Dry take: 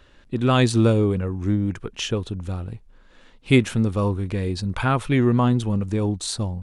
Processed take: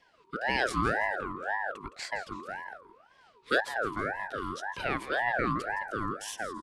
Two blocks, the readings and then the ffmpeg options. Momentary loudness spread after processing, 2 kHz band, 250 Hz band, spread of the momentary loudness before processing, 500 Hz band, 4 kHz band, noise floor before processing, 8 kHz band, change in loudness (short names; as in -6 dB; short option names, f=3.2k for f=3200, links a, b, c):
11 LU, +2.0 dB, -17.5 dB, 12 LU, -10.0 dB, -9.5 dB, -53 dBFS, -11.0 dB, -10.0 dB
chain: -filter_complex "[0:a]afreqshift=260,asplit=4[a][b][c][d];[b]adelay=165,afreqshift=-50,volume=-13.5dB[e];[c]adelay=330,afreqshift=-100,volume=-22.9dB[f];[d]adelay=495,afreqshift=-150,volume=-32.2dB[g];[a][e][f][g]amix=inputs=4:normalize=0,aeval=exprs='val(0)*sin(2*PI*1000*n/s+1000*0.35/1.9*sin(2*PI*1.9*n/s))':c=same,volume=-8.5dB"